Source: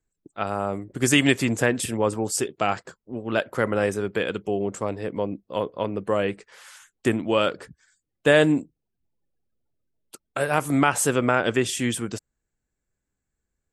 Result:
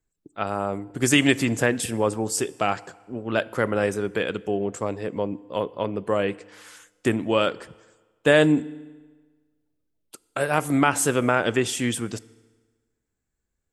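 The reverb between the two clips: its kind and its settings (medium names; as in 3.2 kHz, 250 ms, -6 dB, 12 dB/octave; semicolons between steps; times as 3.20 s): FDN reverb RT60 1.4 s, low-frequency decay 0.95×, high-frequency decay 0.85×, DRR 19 dB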